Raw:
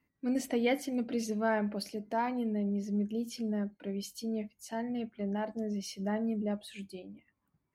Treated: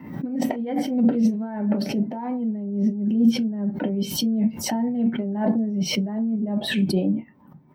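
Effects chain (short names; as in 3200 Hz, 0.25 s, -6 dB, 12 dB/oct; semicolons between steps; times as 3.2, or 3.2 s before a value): band shelf 6900 Hz -16 dB; negative-ratio compressor -43 dBFS, ratio -1; reverb, pre-delay 3 ms, DRR 4.5 dB; backwards sustainer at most 71 dB/s; gain +2 dB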